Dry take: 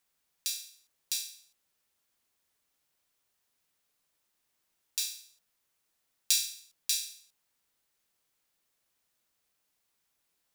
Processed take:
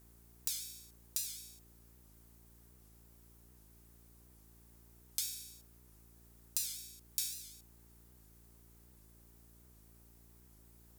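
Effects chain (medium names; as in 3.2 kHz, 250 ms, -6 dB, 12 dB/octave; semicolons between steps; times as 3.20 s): peaking EQ 3.3 kHz -12 dB 2.4 oct; compression 4:1, threshold -51 dBFS, peak gain reduction 20 dB; mains buzz 60 Hz, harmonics 7, -78 dBFS -6 dB/octave; speed mistake 25 fps video run at 24 fps; warped record 78 rpm, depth 160 cents; trim +15 dB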